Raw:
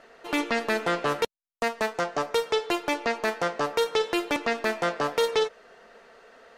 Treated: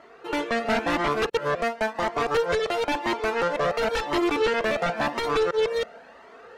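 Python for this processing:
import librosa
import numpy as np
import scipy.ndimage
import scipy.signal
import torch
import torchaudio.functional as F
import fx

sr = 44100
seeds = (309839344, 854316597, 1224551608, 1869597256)

y = fx.reverse_delay(x, sr, ms=324, wet_db=-1.5)
y = scipy.signal.sosfilt(scipy.signal.butter(2, 74.0, 'highpass', fs=sr, output='sos'), y)
y = fx.high_shelf(y, sr, hz=2700.0, db=-10.0)
y = fx.fold_sine(y, sr, drive_db=13, ceiling_db=-7.5)
y = fx.comb_cascade(y, sr, direction='rising', hz=0.96)
y = y * 10.0 ** (-7.5 / 20.0)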